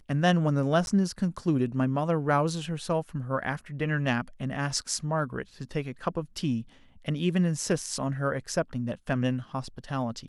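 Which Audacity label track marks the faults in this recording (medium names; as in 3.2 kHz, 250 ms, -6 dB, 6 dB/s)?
0.860000	0.870000	dropout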